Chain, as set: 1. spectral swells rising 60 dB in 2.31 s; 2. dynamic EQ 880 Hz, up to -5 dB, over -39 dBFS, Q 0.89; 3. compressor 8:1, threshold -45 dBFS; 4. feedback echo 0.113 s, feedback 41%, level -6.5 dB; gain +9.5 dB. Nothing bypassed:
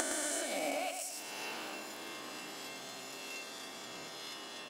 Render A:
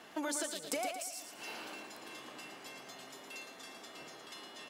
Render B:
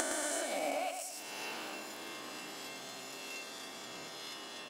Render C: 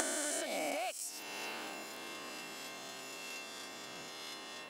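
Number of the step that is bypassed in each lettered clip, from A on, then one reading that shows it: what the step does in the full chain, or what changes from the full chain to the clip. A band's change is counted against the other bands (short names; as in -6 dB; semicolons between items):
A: 1, 250 Hz band +3.5 dB; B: 2, 1 kHz band +1.5 dB; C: 4, echo-to-direct -5.5 dB to none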